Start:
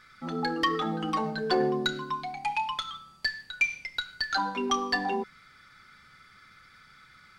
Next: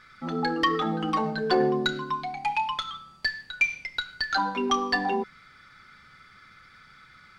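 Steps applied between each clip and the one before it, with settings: treble shelf 7.3 kHz -9 dB; trim +3 dB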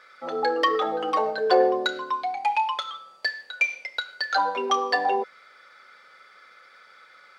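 resonant high-pass 530 Hz, resonance Q 3.8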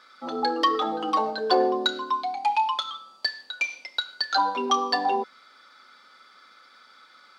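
graphic EQ 125/250/500/1000/2000/4000 Hz -9/+11/-8/+4/-8/+6 dB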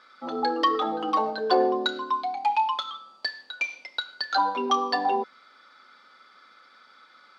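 low-pass 3.6 kHz 6 dB/octave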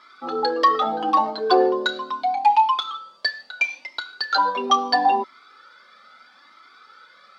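Shepard-style flanger rising 0.76 Hz; trim +8.5 dB

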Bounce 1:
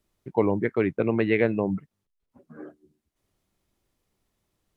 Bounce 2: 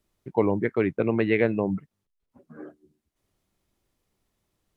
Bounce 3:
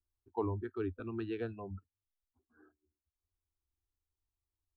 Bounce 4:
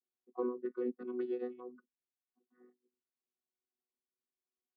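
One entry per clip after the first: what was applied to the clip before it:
no audible change
spectral noise reduction 14 dB; resonant low shelf 120 Hz +10 dB, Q 3; static phaser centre 560 Hz, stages 6; trim -7.5 dB
vocoder on a held chord bare fifth, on B3; trim +1 dB

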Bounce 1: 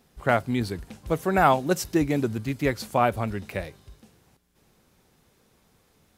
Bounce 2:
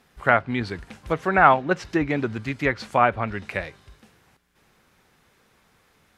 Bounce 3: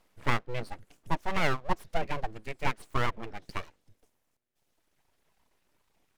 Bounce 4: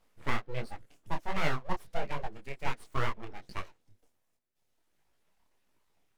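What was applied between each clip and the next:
peaking EQ 1.7 kHz +9.5 dB 2.1 oct; low-pass that closes with the level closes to 2.7 kHz, closed at -16.5 dBFS; trim -1.5 dB
reverb removal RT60 2 s; graphic EQ 500/1000/4000 Hz +9/-12/-4 dB; full-wave rectifier; trim -5.5 dB
detune thickener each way 48 cents

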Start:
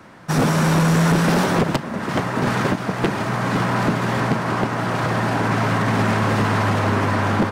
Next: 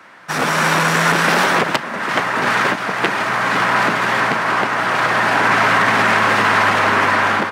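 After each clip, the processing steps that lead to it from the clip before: high-pass 540 Hz 6 dB/octave; peaking EQ 1.9 kHz +7.5 dB 2.1 oct; level rider; trim -1 dB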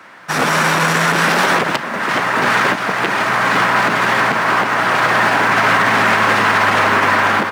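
in parallel at -10.5 dB: short-mantissa float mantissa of 2-bit; on the sum: loudness maximiser +3.5 dB; trim -3 dB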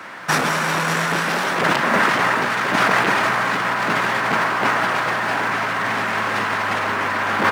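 compressor with a negative ratio -20 dBFS, ratio -1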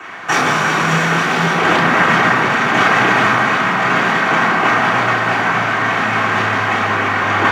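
reverberation RT60 2.6 s, pre-delay 3 ms, DRR -2.5 dB; loudness maximiser -6 dB; trim -1 dB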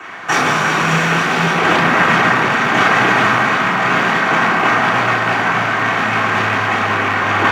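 rattle on loud lows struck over -23 dBFS, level -14 dBFS

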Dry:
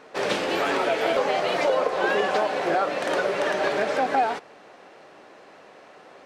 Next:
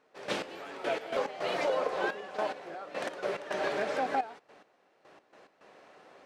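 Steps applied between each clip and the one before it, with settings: trance gate "..x...x.x.xxxxx" 107 bpm -12 dB; trim -7.5 dB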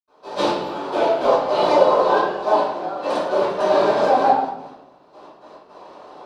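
ten-band graphic EQ 1 kHz +11 dB, 2 kHz -11 dB, 4 kHz +8 dB; reverberation RT60 0.80 s, pre-delay 76 ms; trim -1 dB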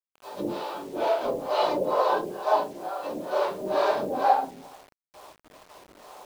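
harmonic tremolo 2.2 Hz, depth 100%, crossover 430 Hz; bit crusher 8-bit; trim -3 dB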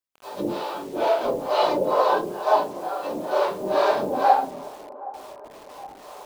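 feedback echo behind a band-pass 769 ms, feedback 57%, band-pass 550 Hz, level -18 dB; trim +3.5 dB

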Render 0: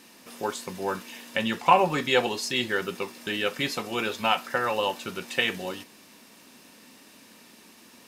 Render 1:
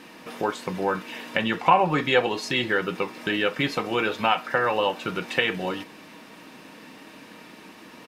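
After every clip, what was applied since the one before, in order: tone controls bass -1 dB, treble -14 dB; comb 6.4 ms, depth 36%; compression 1.5:1, threshold -37 dBFS, peak gain reduction 9 dB; trim +9 dB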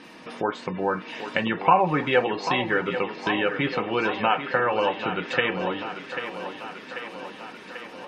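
low-pass that closes with the level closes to 2.8 kHz, closed at -21 dBFS; spectral gate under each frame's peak -30 dB strong; thinning echo 790 ms, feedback 68%, high-pass 200 Hz, level -9.5 dB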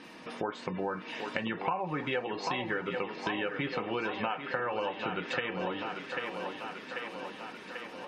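compression 5:1, threshold -26 dBFS, peak gain reduction 13 dB; trim -3.5 dB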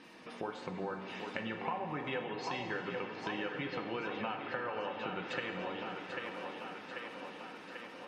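reverberation RT60 3.3 s, pre-delay 38 ms, DRR 5.5 dB; trim -6 dB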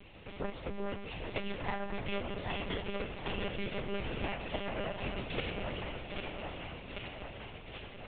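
comb filter that takes the minimum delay 0.35 ms; monotone LPC vocoder at 8 kHz 200 Hz; trim +3 dB

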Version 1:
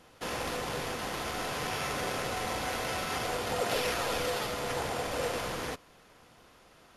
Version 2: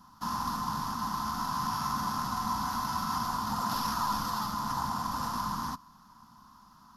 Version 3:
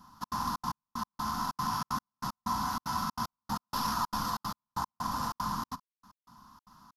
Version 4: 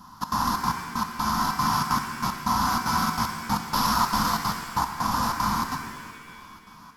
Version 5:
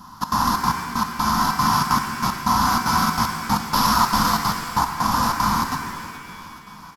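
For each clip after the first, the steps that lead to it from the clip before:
FFT filter 130 Hz 0 dB, 220 Hz +9 dB, 470 Hz -25 dB, 720 Hz -9 dB, 1 kHz +12 dB, 2.3 kHz -19 dB, 5.2 kHz +3 dB, 8.9 kHz -9 dB, 14 kHz +7 dB
trance gate "xxx.xxx.x...x..x" 189 bpm -60 dB
pitch-shifted reverb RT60 1.8 s, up +7 st, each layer -8 dB, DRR 5.5 dB; trim +8.5 dB
feedback delay 423 ms, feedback 59%, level -18.5 dB; trim +5 dB

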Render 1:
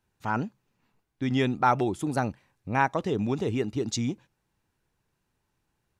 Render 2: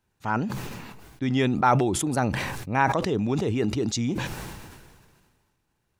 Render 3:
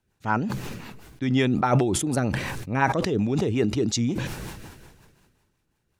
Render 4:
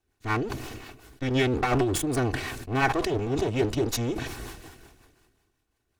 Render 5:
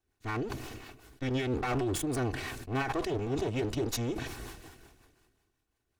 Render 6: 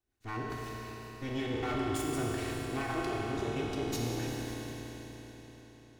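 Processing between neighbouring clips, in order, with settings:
decay stretcher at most 33 dB/s; trim +1.5 dB
rotary cabinet horn 5.5 Hz; trim +3 dB
comb filter that takes the minimum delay 2.7 ms; trim -1 dB
peak limiter -18 dBFS, peak gain reduction 9.5 dB; trim -4.5 dB
reverberation RT60 4.7 s, pre-delay 7 ms, DRR -4 dB; trim -6.5 dB

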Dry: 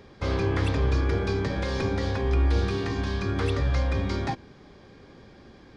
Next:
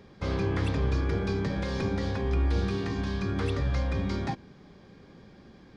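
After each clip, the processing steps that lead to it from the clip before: peaking EQ 180 Hz +7 dB 0.67 oct; trim -4 dB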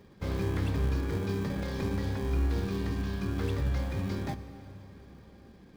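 in parallel at -6 dB: sample-rate reducer 1.4 kHz, jitter 0%; on the sum: plate-style reverb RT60 4.6 s, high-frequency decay 0.8×, DRR 12 dB; trim -6 dB

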